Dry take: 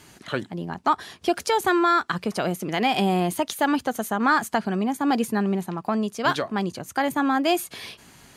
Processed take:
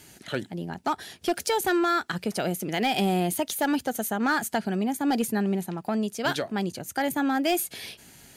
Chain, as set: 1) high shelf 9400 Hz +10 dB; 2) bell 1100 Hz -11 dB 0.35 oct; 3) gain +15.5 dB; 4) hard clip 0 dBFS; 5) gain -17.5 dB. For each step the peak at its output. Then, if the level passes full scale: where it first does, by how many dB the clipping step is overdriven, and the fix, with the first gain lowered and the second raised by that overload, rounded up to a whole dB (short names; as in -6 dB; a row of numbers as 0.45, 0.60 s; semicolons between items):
-7.5, -8.0, +7.5, 0.0, -17.5 dBFS; step 3, 7.5 dB; step 3 +7.5 dB, step 5 -9.5 dB